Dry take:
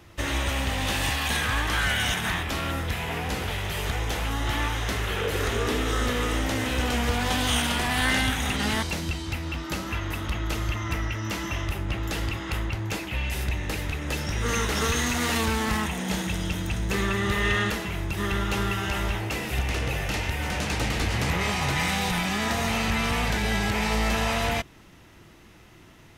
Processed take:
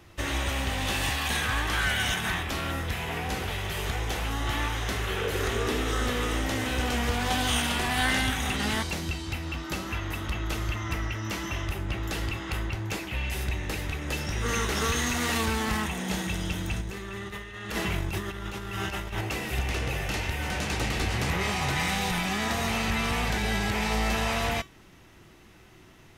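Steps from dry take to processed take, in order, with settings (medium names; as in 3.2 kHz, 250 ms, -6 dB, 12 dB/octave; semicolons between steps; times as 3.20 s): 16.81–19.21 s: compressor with a negative ratio -30 dBFS, ratio -0.5; feedback comb 380 Hz, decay 0.23 s, harmonics all, mix 60%; trim +5 dB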